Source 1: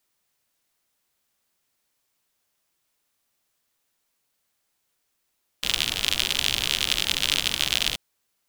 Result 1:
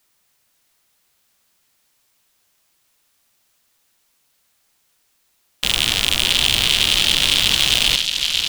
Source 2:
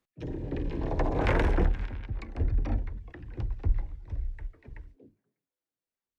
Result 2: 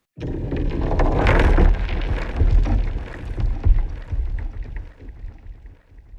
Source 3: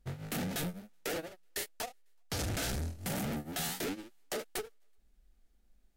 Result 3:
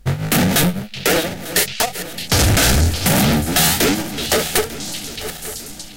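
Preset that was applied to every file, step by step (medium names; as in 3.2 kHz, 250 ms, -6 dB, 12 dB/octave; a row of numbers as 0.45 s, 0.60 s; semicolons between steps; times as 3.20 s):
backward echo that repeats 448 ms, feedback 66%, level -13 dB; peaking EQ 400 Hz -2.5 dB 1.9 oct; repeats whose band climbs or falls 620 ms, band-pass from 3.5 kHz, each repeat 0.7 oct, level -6.5 dB; overload inside the chain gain 13 dB; peak normalisation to -3 dBFS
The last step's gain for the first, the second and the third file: +10.0 dB, +10.0 dB, +21.5 dB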